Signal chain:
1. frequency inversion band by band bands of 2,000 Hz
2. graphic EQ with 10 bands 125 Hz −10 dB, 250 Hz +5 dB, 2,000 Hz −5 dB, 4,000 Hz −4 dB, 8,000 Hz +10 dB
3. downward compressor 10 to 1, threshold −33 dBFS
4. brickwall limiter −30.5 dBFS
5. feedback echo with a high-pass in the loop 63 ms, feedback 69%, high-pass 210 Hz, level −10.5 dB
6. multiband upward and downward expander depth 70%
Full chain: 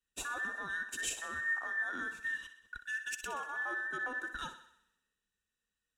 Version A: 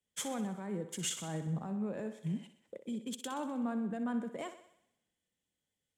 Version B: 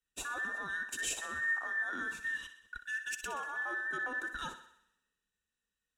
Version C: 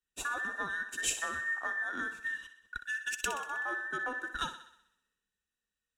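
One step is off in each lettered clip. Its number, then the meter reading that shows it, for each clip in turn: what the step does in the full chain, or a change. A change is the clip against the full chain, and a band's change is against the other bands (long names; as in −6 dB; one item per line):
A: 1, 2 kHz band −19.0 dB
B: 3, average gain reduction 7.0 dB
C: 4, average gain reduction 1.5 dB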